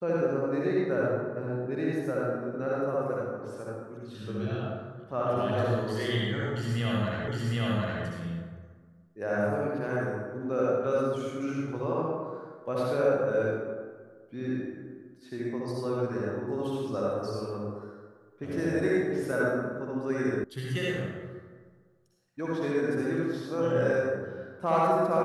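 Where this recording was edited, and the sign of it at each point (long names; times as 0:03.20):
0:07.28: the same again, the last 0.76 s
0:20.44: cut off before it has died away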